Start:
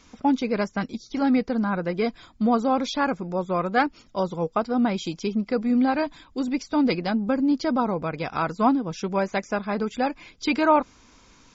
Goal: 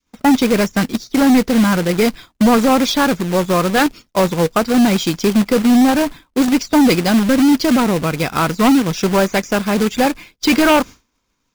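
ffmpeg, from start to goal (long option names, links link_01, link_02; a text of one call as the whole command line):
ffmpeg -i in.wav -filter_complex "[0:a]asettb=1/sr,asplit=3[link_01][link_02][link_03];[link_01]atrim=end=5.764[link_04];[link_02]atrim=start=5.76:end=6.42,asetpts=PTS-STARTPTS,afade=type=in:duration=0.004:curve=qsin,afade=type=out:start_time=0.656:duration=0.004:curve=qsin,aemphasis=mode=reproduction:type=75fm[link_05];[link_03]atrim=start=6.416[link_06];[link_04][link_05]acrossfade=duration=0.004:curve1=hsin:curve2=qsin[link_07];[link_07][link_06]acrossfade=duration=0.004:curve1=qsin:curve2=hsin,aeval=exprs='0.422*sin(PI/2*2*val(0)/0.422)':channel_layout=same,adynamicequalizer=threshold=0.0355:dfrequency=800:dqfactor=0.94:tfrequency=800:tqfactor=0.94:attack=5:release=100:ratio=0.375:range=4:mode=cutabove:tftype=bell,acrusher=bits=2:mode=log:mix=0:aa=0.000001,agate=range=-33dB:threshold=-26dB:ratio=3:detection=peak,volume=2.5dB" out.wav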